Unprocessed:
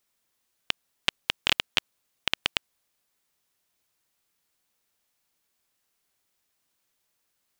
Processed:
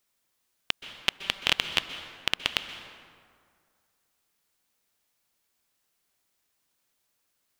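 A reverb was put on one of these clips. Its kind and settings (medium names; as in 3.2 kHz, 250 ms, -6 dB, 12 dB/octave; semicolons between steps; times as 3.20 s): plate-style reverb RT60 2.1 s, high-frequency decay 0.55×, pre-delay 115 ms, DRR 9.5 dB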